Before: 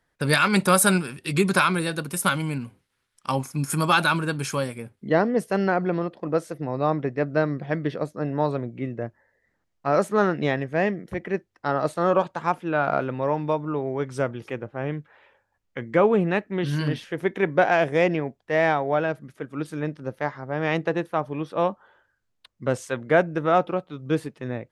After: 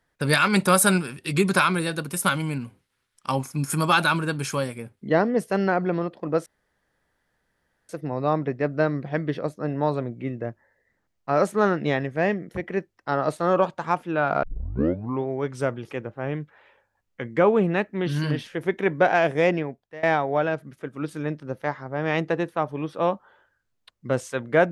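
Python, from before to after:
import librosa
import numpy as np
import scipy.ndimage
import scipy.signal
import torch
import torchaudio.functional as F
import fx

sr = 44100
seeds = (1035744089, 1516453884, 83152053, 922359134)

y = fx.edit(x, sr, fx.insert_room_tone(at_s=6.46, length_s=1.43),
    fx.tape_start(start_s=13.0, length_s=0.83),
    fx.fade_out_to(start_s=18.09, length_s=0.51, floor_db=-22.5), tone=tone)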